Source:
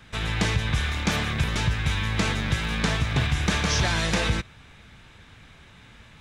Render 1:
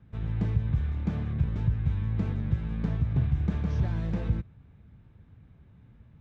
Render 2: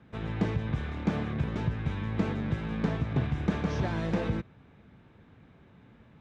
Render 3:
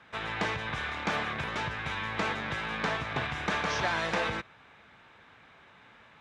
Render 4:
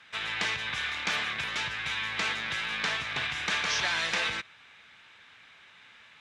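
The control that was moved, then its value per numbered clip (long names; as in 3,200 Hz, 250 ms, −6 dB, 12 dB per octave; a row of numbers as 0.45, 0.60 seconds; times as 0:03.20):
resonant band-pass, frequency: 100, 270, 930, 2,300 Hertz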